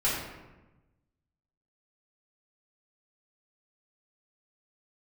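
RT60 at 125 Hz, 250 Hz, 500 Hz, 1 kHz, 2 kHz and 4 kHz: 1.6 s, 1.3 s, 1.1 s, 1.0 s, 0.95 s, 0.65 s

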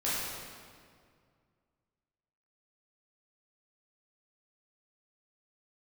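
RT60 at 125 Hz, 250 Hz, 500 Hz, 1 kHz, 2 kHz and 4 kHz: 2.7 s, 2.4 s, 2.2 s, 2.0 s, 1.7 s, 1.5 s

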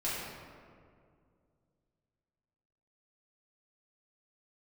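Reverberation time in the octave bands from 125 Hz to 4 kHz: 3.1 s, 2.8 s, 2.4 s, 2.0 s, 1.6 s, 1.1 s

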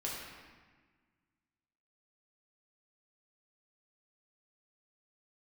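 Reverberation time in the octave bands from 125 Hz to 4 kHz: 2.0 s, 2.0 s, 1.4 s, 1.4 s, 1.5 s, 1.1 s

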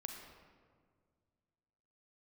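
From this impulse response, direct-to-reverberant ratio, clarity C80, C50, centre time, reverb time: 2.5 dB, 5.0 dB, 3.5 dB, 53 ms, 1.9 s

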